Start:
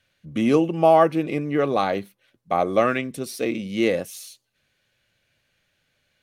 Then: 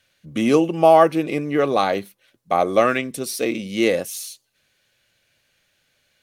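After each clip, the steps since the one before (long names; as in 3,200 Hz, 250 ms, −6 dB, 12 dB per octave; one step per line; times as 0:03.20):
bass and treble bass −4 dB, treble +5 dB
level +3 dB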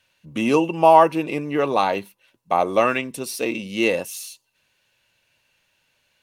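hollow resonant body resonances 950/2,700 Hz, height 14 dB, ringing for 35 ms
level −2.5 dB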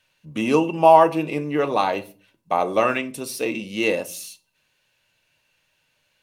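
rectangular room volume 220 cubic metres, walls furnished, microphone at 0.49 metres
level −1.5 dB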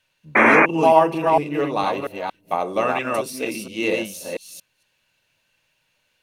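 delay that plays each chunk backwards 230 ms, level −2 dB
sound drawn into the spectrogram noise, 0:00.35–0:00.66, 210–2,500 Hz −11 dBFS
level −2.5 dB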